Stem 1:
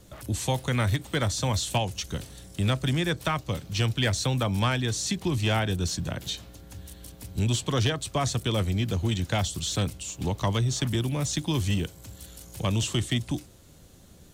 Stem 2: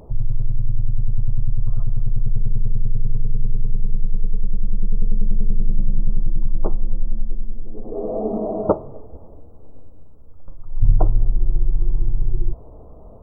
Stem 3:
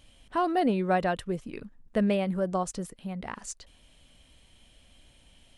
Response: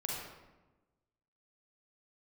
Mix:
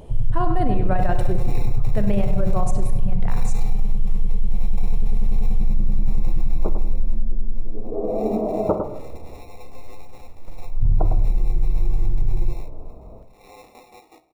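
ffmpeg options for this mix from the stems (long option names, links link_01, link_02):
-filter_complex "[0:a]aeval=exprs='val(0)*sin(2*PI*960*n/s)':channel_layout=same,flanger=delay=18:depth=3.9:speed=0.89,acrusher=samples=28:mix=1:aa=0.000001,adelay=700,volume=-11dB,asplit=3[link_01][link_02][link_03];[link_02]volume=-16.5dB[link_04];[link_03]volume=-5dB[link_05];[1:a]volume=-1dB,asplit=3[link_06][link_07][link_08];[link_07]volume=-12.5dB[link_09];[link_08]volume=-9dB[link_10];[2:a]equalizer=frequency=4100:width_type=o:width=2.1:gain=-7.5,volume=1dB,asplit=3[link_11][link_12][link_13];[link_12]volume=-4.5dB[link_14];[link_13]apad=whole_len=663037[link_15];[link_01][link_15]sidechaingate=range=-19dB:threshold=-52dB:ratio=16:detection=peak[link_16];[link_16][link_11]amix=inputs=2:normalize=0,alimiter=limit=-18.5dB:level=0:latency=1:release=373,volume=0dB[link_17];[3:a]atrim=start_sample=2205[link_18];[link_04][link_09][link_14]amix=inputs=3:normalize=0[link_19];[link_19][link_18]afir=irnorm=-1:irlink=0[link_20];[link_05][link_10]amix=inputs=2:normalize=0,aecho=0:1:104:1[link_21];[link_06][link_17][link_20][link_21]amix=inputs=4:normalize=0,alimiter=limit=-9.5dB:level=0:latency=1:release=13"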